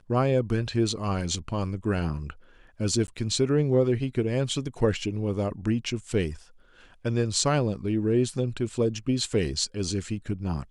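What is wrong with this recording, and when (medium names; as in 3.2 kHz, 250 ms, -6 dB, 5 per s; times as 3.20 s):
3.07–3.08 s: dropout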